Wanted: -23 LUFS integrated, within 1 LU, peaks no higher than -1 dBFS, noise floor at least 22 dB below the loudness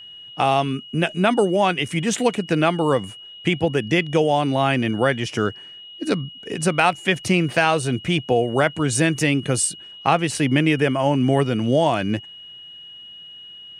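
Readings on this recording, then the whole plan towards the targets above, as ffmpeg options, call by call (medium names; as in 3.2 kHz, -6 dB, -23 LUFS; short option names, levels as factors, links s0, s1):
steady tone 2.9 kHz; tone level -38 dBFS; loudness -20.5 LUFS; peak level -4.0 dBFS; loudness target -23.0 LUFS
-> -af "bandreject=f=2900:w=30"
-af "volume=0.75"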